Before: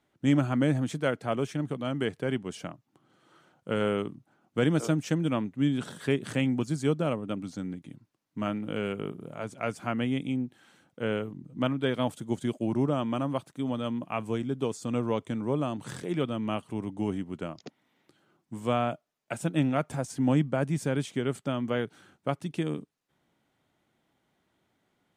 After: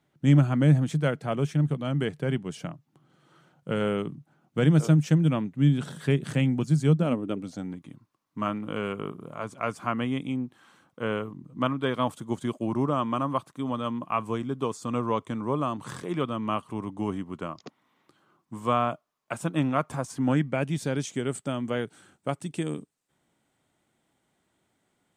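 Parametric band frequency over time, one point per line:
parametric band +11.5 dB 0.42 octaves
0:06.91 150 Hz
0:07.79 1,100 Hz
0:20.19 1,100 Hz
0:21.20 8,200 Hz

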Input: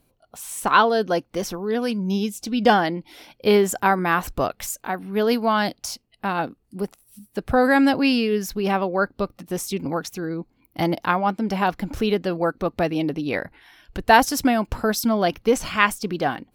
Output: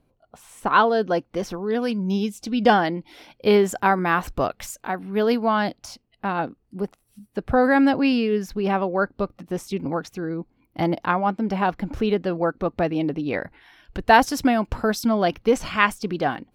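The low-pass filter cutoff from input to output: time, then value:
low-pass filter 6 dB per octave
1,500 Hz
from 0:00.76 2,700 Hz
from 0:01.51 4,400 Hz
from 0:05.32 2,300 Hz
from 0:13.41 4,300 Hz

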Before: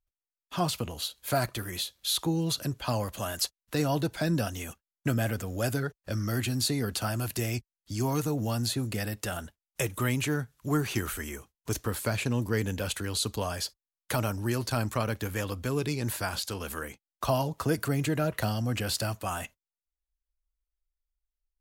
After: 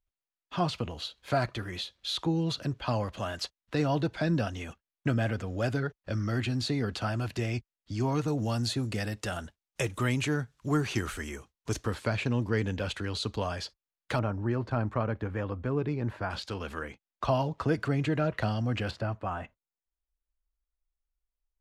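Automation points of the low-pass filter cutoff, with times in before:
3,900 Hz
from 0:08.28 6,700 Hz
from 0:11.94 4,000 Hz
from 0:14.19 1,500 Hz
from 0:16.30 3,500 Hz
from 0:18.91 1,600 Hz

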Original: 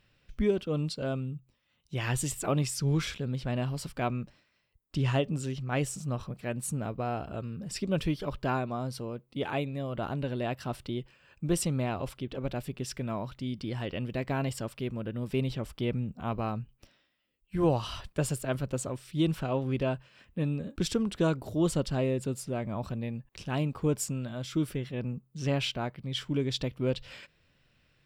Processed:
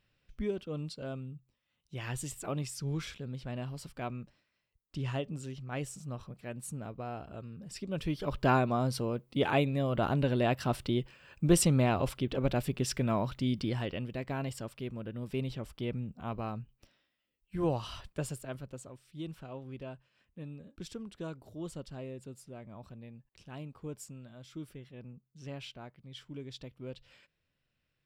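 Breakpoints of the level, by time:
0:07.92 −7.5 dB
0:08.47 +4 dB
0:13.58 +4 dB
0:14.12 −5 dB
0:18.08 −5 dB
0:18.88 −14 dB

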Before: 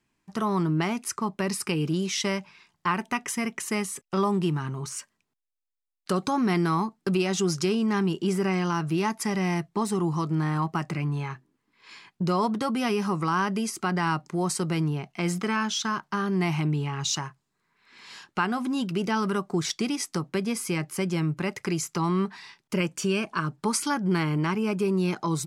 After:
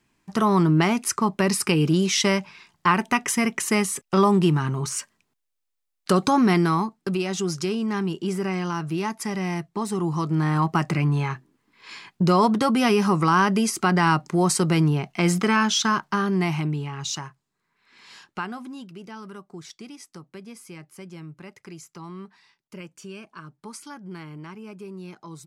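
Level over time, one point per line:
0:06.38 +6.5 dB
0:07.14 −1 dB
0:09.79 −1 dB
0:10.80 +6.5 dB
0:15.95 +6.5 dB
0:16.89 −2 dB
0:18.24 −2 dB
0:18.94 −13.5 dB

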